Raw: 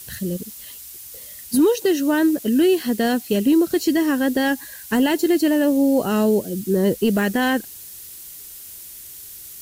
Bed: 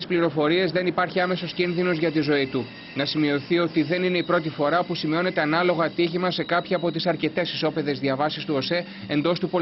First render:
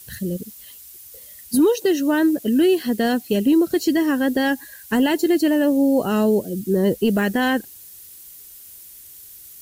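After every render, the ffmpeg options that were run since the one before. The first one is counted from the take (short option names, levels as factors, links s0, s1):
-af "afftdn=nr=6:nf=-39"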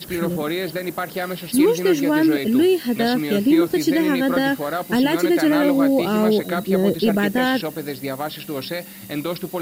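-filter_complex "[1:a]volume=0.668[s0];[0:a][s0]amix=inputs=2:normalize=0"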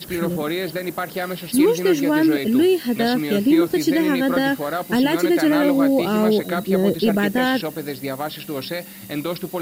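-af anull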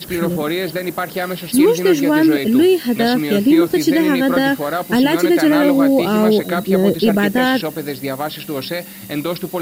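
-af "volume=1.58,alimiter=limit=0.708:level=0:latency=1"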